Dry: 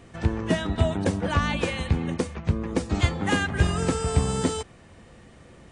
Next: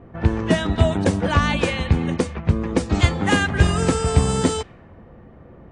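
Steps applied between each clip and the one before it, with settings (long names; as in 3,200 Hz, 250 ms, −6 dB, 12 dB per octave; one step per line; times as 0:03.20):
low-pass that shuts in the quiet parts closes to 980 Hz, open at −20 dBFS
level +5.5 dB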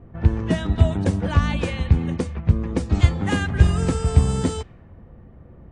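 low-shelf EQ 170 Hz +11.5 dB
level −7 dB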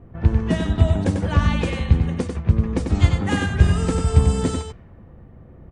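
single-tap delay 95 ms −5.5 dB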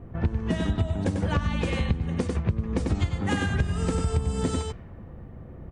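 downward compressor 12 to 1, threshold −23 dBFS, peak gain reduction 16 dB
level +2 dB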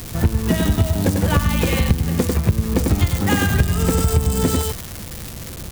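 spike at every zero crossing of −24 dBFS
level +8 dB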